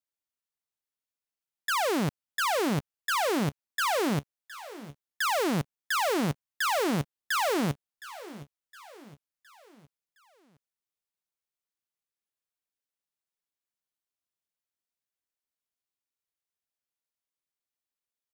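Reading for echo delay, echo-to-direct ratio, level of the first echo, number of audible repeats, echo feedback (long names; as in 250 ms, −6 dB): 714 ms, −16.0 dB, −17.0 dB, 3, 47%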